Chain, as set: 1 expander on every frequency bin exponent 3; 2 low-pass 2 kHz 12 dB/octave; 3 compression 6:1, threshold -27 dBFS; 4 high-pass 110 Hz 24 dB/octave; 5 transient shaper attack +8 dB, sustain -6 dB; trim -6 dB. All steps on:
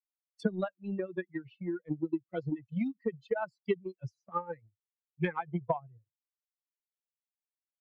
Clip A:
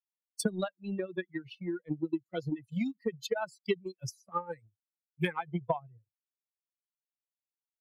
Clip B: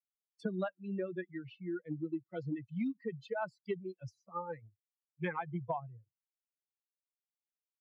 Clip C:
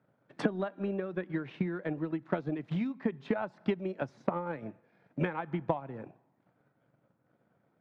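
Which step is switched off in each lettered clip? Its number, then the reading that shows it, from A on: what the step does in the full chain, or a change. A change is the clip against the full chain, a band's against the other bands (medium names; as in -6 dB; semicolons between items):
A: 2, 4 kHz band +11.0 dB; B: 5, crest factor change -4.0 dB; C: 1, 1 kHz band -1.5 dB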